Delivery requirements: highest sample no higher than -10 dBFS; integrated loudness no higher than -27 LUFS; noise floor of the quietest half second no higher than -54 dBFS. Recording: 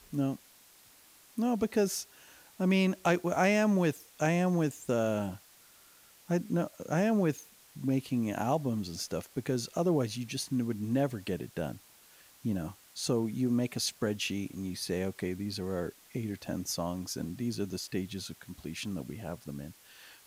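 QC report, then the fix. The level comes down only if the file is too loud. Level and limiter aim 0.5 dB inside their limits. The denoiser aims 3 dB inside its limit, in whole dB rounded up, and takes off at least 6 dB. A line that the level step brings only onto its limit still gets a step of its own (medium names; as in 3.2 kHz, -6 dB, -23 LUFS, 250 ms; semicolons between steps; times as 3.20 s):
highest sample -15.5 dBFS: pass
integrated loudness -32.5 LUFS: pass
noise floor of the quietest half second -59 dBFS: pass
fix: none needed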